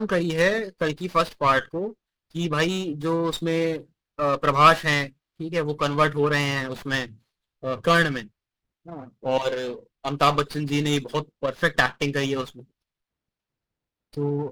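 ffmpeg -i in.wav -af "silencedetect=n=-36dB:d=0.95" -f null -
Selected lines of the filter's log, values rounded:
silence_start: 12.60
silence_end: 14.14 | silence_duration: 1.54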